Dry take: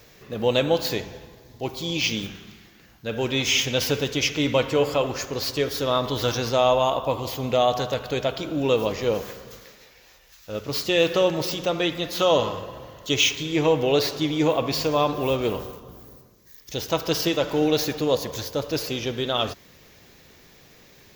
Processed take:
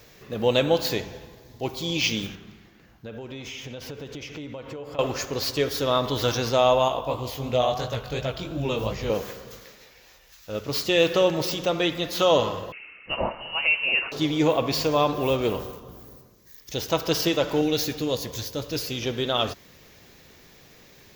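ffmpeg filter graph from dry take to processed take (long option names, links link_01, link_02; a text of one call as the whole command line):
ffmpeg -i in.wav -filter_complex "[0:a]asettb=1/sr,asplit=3[link_01][link_02][link_03];[link_01]atrim=end=2.354[link_04];[link_02]atrim=start=2.35:end=4.99,asetpts=PTS-STARTPTS,afade=type=in:duration=0.004:curve=qsin,afade=type=out:start_time=2.636:duration=0.004:curve=qsin,highshelf=frequency=2400:gain=-9.5,acompressor=threshold=-34dB:ratio=8:attack=3.2:release=140:knee=1:detection=peak[link_05];[link_03]atrim=start=4.986[link_06];[link_04][link_05]acrossfade=duration=0.004:curve1=hsin:curve2=qsin[link_07];[link_07][link_06]acrossfade=duration=0.004:curve1=qsin:curve2=hsin,asettb=1/sr,asplit=3[link_08][link_09][link_10];[link_08]atrim=end=6.884[link_11];[link_09]atrim=start=6.88:end=9.1,asetpts=PTS-STARTPTS,afade=type=in:duration=0.004:curve=qsin,afade=type=out:start_time=2.216:duration=0.004:curve=qsin,asubboost=boost=6.5:cutoff=140,flanger=delay=15.5:depth=6.4:speed=2.9[link_12];[link_10]atrim=start=9.096[link_13];[link_11][link_12]acrossfade=duration=0.004:curve1=hsin:curve2=qsin[link_14];[link_14][link_13]acrossfade=duration=0.004:curve1=qsin:curve2=hsin,asettb=1/sr,asplit=3[link_15][link_16][link_17];[link_15]atrim=end=12.724[link_18];[link_16]atrim=start=12.72:end=14.12,asetpts=PTS-STARTPTS,afade=type=in:duration=0.004:curve=qsin,afade=type=out:start_time=1.396:duration=0.004:curve=qsin,highpass=470,lowpass=frequency=2700:width_type=q:width=0.5098,lowpass=frequency=2700:width_type=q:width=0.6013,lowpass=frequency=2700:width_type=q:width=0.9,lowpass=frequency=2700:width_type=q:width=2.563,afreqshift=-3200[link_19];[link_17]atrim=start=14.116[link_20];[link_18][link_19]acrossfade=duration=0.004:curve1=hsin:curve2=qsin[link_21];[link_21][link_20]acrossfade=duration=0.004:curve1=qsin:curve2=hsin,asettb=1/sr,asplit=3[link_22][link_23][link_24];[link_22]atrim=end=17.614[link_25];[link_23]atrim=start=17.61:end=19.02,asetpts=PTS-STARTPTS,afade=type=in:duration=0.004:curve=qsin,afade=type=out:start_time=1.406:duration=0.004:curve=qsin,equalizer=frequency=810:width_type=o:width=2.3:gain=-7.5,asplit=2[link_26][link_27];[link_27]adelay=17,volume=-12dB[link_28];[link_26][link_28]amix=inputs=2:normalize=0,atrim=end_sample=62181[link_29];[link_24]atrim=start=19.016[link_30];[link_25][link_29]acrossfade=duration=0.004:curve1=hsin:curve2=qsin[link_31];[link_31][link_30]acrossfade=duration=0.004:curve1=qsin:curve2=hsin" out.wav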